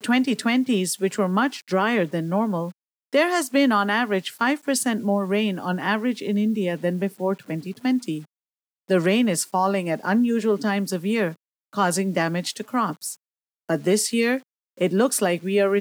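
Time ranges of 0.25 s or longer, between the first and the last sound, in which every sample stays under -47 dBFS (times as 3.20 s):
2.72–3.13 s
8.25–8.88 s
11.36–11.73 s
13.16–13.69 s
14.43–14.77 s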